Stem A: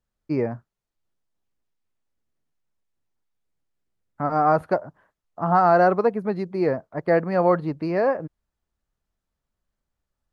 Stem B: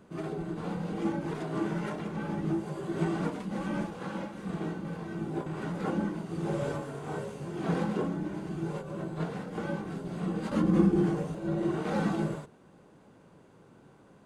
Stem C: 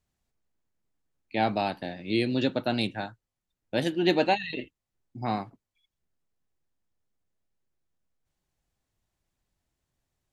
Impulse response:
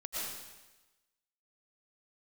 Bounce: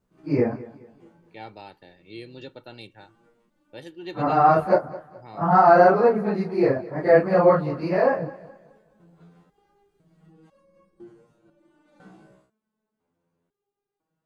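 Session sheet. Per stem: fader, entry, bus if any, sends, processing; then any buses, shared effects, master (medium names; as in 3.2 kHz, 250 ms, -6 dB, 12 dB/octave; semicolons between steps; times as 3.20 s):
+2.0 dB, 0.00 s, no send, echo send -18.5 dB, phase randomisation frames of 100 ms
-12.0 dB, 0.00 s, no send, no echo send, resonator arpeggio 2 Hz 63–550 Hz; auto duck -6 dB, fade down 0.35 s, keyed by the third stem
-14.5 dB, 0.00 s, no send, no echo send, comb 2.2 ms, depth 54%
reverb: none
echo: feedback delay 212 ms, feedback 35%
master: none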